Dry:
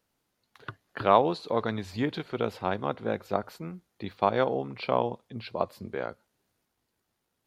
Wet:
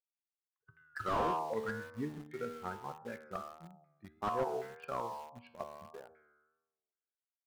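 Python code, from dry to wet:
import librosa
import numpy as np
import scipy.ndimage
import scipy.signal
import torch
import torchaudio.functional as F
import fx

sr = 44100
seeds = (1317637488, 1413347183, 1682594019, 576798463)

p1 = fx.bin_expand(x, sr, power=2.0)
p2 = fx.comb_fb(p1, sr, f0_hz=77.0, decay_s=1.2, harmonics='all', damping=0.0, mix_pct=80)
p3 = fx.filter_lfo_lowpass(p2, sr, shape='saw_down', hz=1.3, low_hz=740.0, high_hz=2100.0, q=5.0)
p4 = p3 + fx.echo_feedback(p3, sr, ms=124, feedback_pct=34, wet_db=-22, dry=0)
p5 = fx.vibrato(p4, sr, rate_hz=1.7, depth_cents=72.0)
p6 = fx.quant_dither(p5, sr, seeds[0], bits=8, dither='none')
p7 = p5 + (p6 * librosa.db_to_amplitude(-9.0))
p8 = fx.slew_limit(p7, sr, full_power_hz=23.0)
y = p8 * librosa.db_to_amplitude(1.0)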